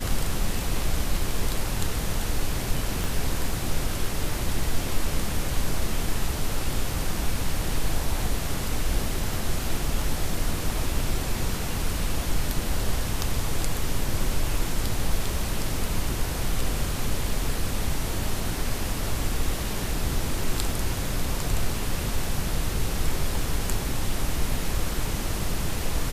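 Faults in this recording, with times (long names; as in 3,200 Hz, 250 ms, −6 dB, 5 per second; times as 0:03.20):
0:03.04: click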